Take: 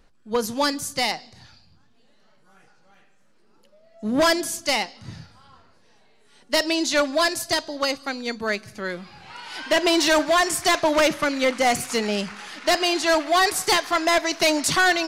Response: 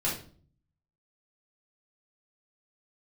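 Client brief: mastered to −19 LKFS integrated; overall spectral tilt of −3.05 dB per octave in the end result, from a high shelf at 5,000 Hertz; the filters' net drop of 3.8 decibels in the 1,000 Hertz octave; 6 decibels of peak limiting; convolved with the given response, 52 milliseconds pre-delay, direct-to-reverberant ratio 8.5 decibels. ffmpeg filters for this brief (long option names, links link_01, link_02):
-filter_complex "[0:a]equalizer=frequency=1000:width_type=o:gain=-5,highshelf=frequency=5000:gain=-8.5,alimiter=limit=-20dB:level=0:latency=1,asplit=2[link_01][link_02];[1:a]atrim=start_sample=2205,adelay=52[link_03];[link_02][link_03]afir=irnorm=-1:irlink=0,volume=-16dB[link_04];[link_01][link_04]amix=inputs=2:normalize=0,volume=8.5dB"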